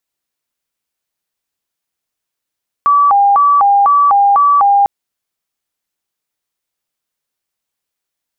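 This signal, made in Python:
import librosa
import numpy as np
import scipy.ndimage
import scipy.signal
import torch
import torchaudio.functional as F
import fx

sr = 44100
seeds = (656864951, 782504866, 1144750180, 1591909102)

y = fx.siren(sr, length_s=2.0, kind='hi-lo', low_hz=804.0, high_hz=1150.0, per_s=2.0, wave='sine', level_db=-6.0)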